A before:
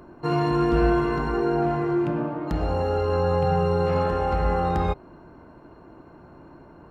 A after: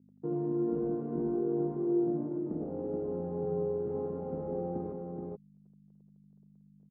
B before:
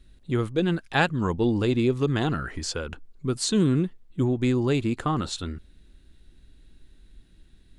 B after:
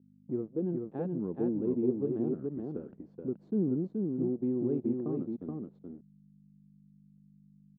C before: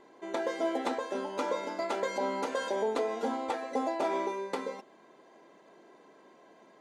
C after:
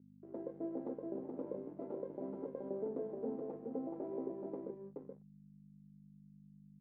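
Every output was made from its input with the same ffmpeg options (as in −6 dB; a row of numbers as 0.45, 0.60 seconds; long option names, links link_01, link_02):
-filter_complex "[0:a]asplit=2[link_01][link_02];[link_02]acompressor=threshold=-31dB:ratio=6,volume=1dB[link_03];[link_01][link_03]amix=inputs=2:normalize=0,aeval=exprs='sgn(val(0))*max(abs(val(0))-0.0237,0)':channel_layout=same,aeval=exprs='val(0)+0.00794*(sin(2*PI*50*n/s)+sin(2*PI*2*50*n/s)/2+sin(2*PI*3*50*n/s)/3+sin(2*PI*4*50*n/s)/4+sin(2*PI*5*50*n/s)/5)':channel_layout=same,asuperpass=centerf=280:order=4:qfactor=0.99,aecho=1:1:426:0.668,volume=-7.5dB"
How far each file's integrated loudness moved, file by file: −10.0, −8.0, −10.5 LU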